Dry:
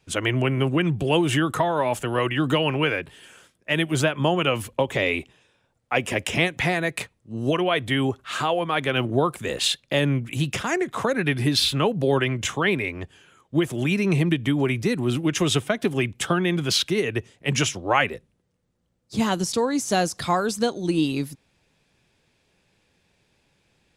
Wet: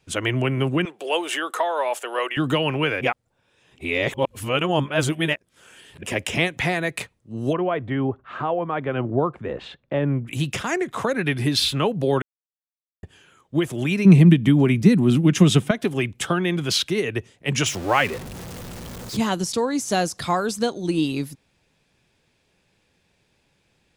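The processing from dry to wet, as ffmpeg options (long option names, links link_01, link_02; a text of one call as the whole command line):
ffmpeg -i in.wav -filter_complex "[0:a]asettb=1/sr,asplit=3[link_01][link_02][link_03];[link_01]atrim=end=0.854[link_04];[link_02]atrim=start=0.85:end=2.37,asetpts=PTS-STARTPTS,afade=type=in:duration=0.004:curve=qsin,afade=type=out:start_time=1.516:duration=0.004:curve=qsin,highpass=frequency=430:width=0.5412,highpass=frequency=430:width=1.3066[link_05];[link_03]atrim=start=2.366[link_06];[link_04][link_05]acrossfade=duration=0.004:curve1=hsin:curve2=qsin[link_07];[link_07][link_06]acrossfade=duration=0.004:curve1=qsin:curve2=hsin,asplit=3[link_08][link_09][link_10];[link_08]afade=type=out:start_time=7.52:duration=0.02[link_11];[link_09]lowpass=1300,afade=type=in:start_time=7.52:duration=0.02,afade=type=out:start_time=10.27:duration=0.02[link_12];[link_10]afade=type=in:start_time=10.27:duration=0.02[link_13];[link_11][link_12][link_13]amix=inputs=3:normalize=0,asettb=1/sr,asplit=3[link_14][link_15][link_16];[link_14]atrim=end=14.054[link_17];[link_15]atrim=start=14.05:end=15.71,asetpts=PTS-STARTPTS,afade=type=in:duration=0.004:curve=qsin,afade=type=out:start_time=1.656:duration=0.004:curve=qsin,equalizer=frequency=190:width=1.5:gain=14[link_18];[link_16]atrim=start=15.706[link_19];[link_17][link_18]acrossfade=duration=0.004:curve1=hsin:curve2=qsin[link_20];[link_20][link_19]acrossfade=duration=0.004:curve1=qsin:curve2=hsin,asettb=1/sr,asplit=3[link_21][link_22][link_23];[link_21]atrim=end=17.664[link_24];[link_22]atrim=start=17.66:end=19.17,asetpts=PTS-STARTPTS,afade=type=in:duration=0.004:curve=qsin,afade=type=out:start_time=1.506:duration=0.004:curve=qsin,aeval=exprs='val(0)+0.5*0.0335*sgn(val(0))':channel_layout=same[link_25];[link_23]atrim=start=19.166[link_26];[link_24][link_25]acrossfade=duration=0.004:curve1=hsin:curve2=qsin[link_27];[link_27][link_26]acrossfade=duration=0.004:curve1=qsin:curve2=hsin,asplit=5[link_28][link_29][link_30][link_31][link_32];[link_28]atrim=end=3.012[link_33];[link_29]atrim=start=3.008:end=6.032,asetpts=PTS-STARTPTS,areverse[link_34];[link_30]atrim=start=6.028:end=12.22,asetpts=PTS-STARTPTS,afade=type=out:start_time=6.188:duration=0.004:curve=hsin[link_35];[link_31]atrim=start=12.22:end=13.03,asetpts=PTS-STARTPTS,volume=0[link_36];[link_32]atrim=start=13.03,asetpts=PTS-STARTPTS,afade=type=in:duration=0.004:curve=hsin[link_37];[link_33][link_34]acrossfade=duration=0.004:curve1=hsin:curve2=hsin[link_38];[link_35][link_36][link_37]concat=n=3:v=0:a=1[link_39];[link_38][link_39]acrossfade=duration=0.004:curve1=hsin:curve2=hsin" out.wav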